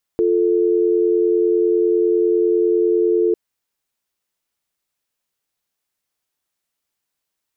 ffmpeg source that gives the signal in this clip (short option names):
-f lavfi -i "aevalsrc='0.158*(sin(2*PI*350*t)+sin(2*PI*440*t))':d=3.15:s=44100"